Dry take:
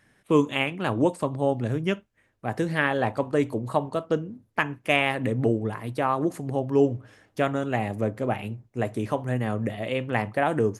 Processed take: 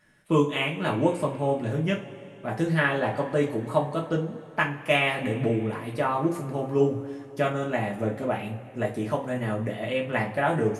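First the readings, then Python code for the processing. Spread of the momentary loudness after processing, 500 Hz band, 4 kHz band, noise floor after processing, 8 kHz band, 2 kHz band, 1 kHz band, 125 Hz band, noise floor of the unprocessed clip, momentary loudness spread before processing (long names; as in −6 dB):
8 LU, −0.5 dB, +0.5 dB, −45 dBFS, 0.0 dB, +0.5 dB, −0.5 dB, 0.0 dB, −67 dBFS, 8 LU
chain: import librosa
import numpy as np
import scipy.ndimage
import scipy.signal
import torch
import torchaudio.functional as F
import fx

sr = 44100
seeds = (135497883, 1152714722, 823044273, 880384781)

y = fx.rev_double_slope(x, sr, seeds[0], early_s=0.27, late_s=3.5, knee_db=-22, drr_db=-2.5)
y = y * librosa.db_to_amplitude(-4.0)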